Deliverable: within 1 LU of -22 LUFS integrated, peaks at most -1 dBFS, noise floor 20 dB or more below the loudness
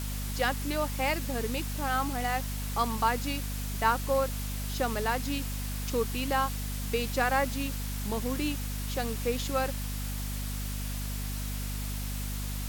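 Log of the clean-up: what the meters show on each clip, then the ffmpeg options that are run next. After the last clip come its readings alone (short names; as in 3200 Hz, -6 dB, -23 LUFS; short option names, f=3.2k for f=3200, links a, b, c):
hum 50 Hz; harmonics up to 250 Hz; hum level -32 dBFS; noise floor -34 dBFS; noise floor target -52 dBFS; loudness -31.5 LUFS; peak -12.0 dBFS; loudness target -22.0 LUFS
-> -af "bandreject=f=50:t=h:w=6,bandreject=f=100:t=h:w=6,bandreject=f=150:t=h:w=6,bandreject=f=200:t=h:w=6,bandreject=f=250:t=h:w=6"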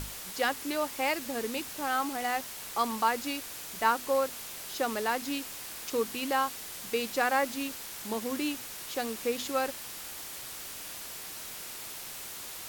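hum none; noise floor -42 dBFS; noise floor target -53 dBFS
-> -af "afftdn=nr=11:nf=-42"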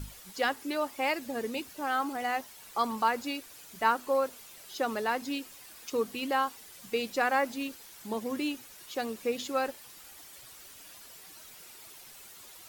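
noise floor -51 dBFS; noise floor target -52 dBFS
-> -af "afftdn=nr=6:nf=-51"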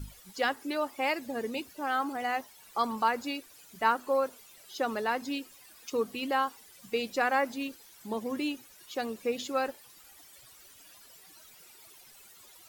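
noise floor -55 dBFS; loudness -32.0 LUFS; peak -12.5 dBFS; loudness target -22.0 LUFS
-> -af "volume=10dB"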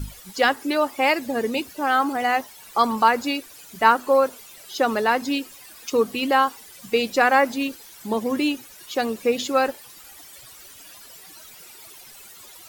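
loudness -22.0 LUFS; peak -2.5 dBFS; noise floor -45 dBFS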